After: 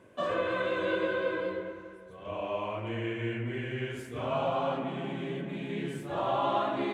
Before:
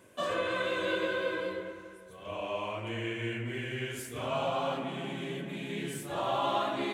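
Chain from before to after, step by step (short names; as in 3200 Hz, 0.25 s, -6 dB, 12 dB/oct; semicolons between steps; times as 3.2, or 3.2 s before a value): LPF 1700 Hz 6 dB/oct; gain +2.5 dB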